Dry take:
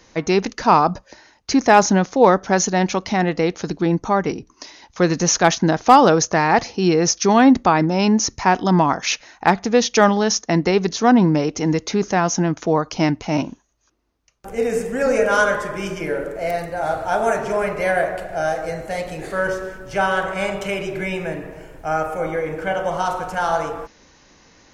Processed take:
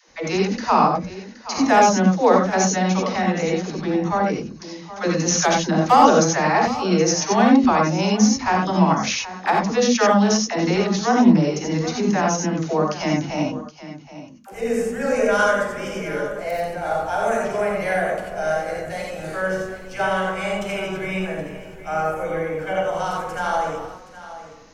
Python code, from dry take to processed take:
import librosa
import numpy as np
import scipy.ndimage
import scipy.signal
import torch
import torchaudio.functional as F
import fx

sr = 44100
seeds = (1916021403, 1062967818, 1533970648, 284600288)

p1 = fx.dispersion(x, sr, late='lows', ms=88.0, hz=380.0)
p2 = p1 + fx.echo_single(p1, sr, ms=772, db=-15.0, dry=0)
p3 = fx.rev_gated(p2, sr, seeds[0], gate_ms=110, shape='rising', drr_db=0.0)
y = p3 * 10.0 ** (-4.5 / 20.0)